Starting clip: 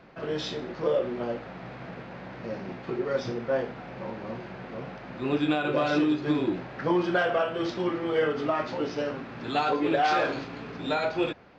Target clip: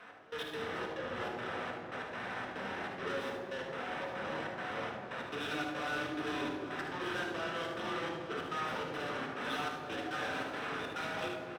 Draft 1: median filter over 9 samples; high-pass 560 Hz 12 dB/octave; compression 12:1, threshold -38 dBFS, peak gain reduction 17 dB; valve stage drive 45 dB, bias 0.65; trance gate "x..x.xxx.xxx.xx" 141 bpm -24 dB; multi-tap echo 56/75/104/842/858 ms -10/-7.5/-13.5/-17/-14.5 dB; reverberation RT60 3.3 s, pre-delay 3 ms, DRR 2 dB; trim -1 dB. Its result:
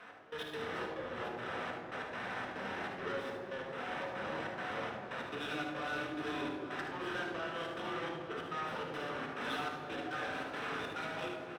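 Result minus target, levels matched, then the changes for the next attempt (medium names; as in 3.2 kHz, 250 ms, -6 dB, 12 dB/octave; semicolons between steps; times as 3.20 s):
compression: peak gain reduction +6 dB
change: compression 12:1, threshold -31.5 dBFS, peak gain reduction 11 dB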